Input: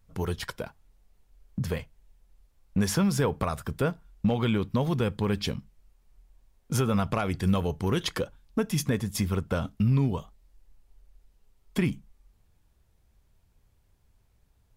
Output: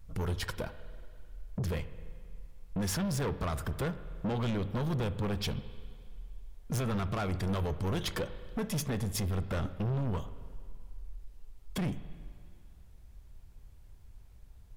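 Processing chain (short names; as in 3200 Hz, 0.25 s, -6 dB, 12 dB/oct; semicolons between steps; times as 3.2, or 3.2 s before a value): low shelf 79 Hz +11 dB; in parallel at 0 dB: compressor, threshold -37 dBFS, peak gain reduction 18.5 dB; on the sum: soft clip -27 dBFS, distortion -6 dB; spring tank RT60 2.1 s, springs 42/48/53 ms, chirp 25 ms, DRR 13 dB; gain -2 dB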